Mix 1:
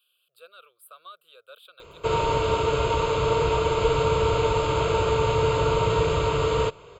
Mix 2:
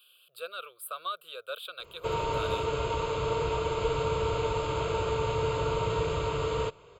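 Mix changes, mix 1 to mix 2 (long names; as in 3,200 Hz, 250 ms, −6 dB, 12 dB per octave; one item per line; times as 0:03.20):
speech +10.0 dB
background −7.0 dB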